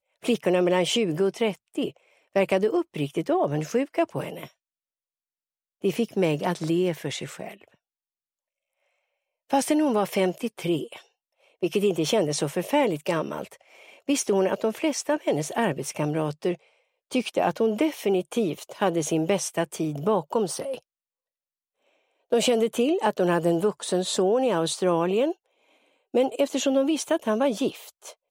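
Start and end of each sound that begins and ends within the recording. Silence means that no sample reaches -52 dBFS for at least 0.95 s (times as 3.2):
5.82–7.75
9.5–20.83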